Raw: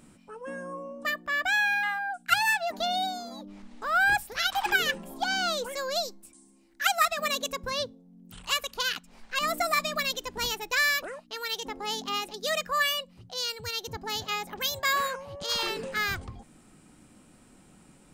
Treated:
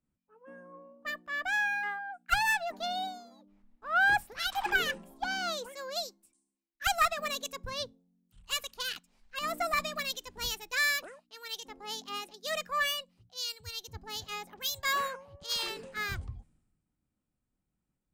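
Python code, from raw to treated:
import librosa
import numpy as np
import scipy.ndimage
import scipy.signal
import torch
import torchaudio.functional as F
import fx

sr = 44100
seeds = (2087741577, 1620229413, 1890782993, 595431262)

y = fx.tube_stage(x, sr, drive_db=18.0, bias=0.35)
y = fx.band_widen(y, sr, depth_pct=100)
y = y * 10.0 ** (-4.0 / 20.0)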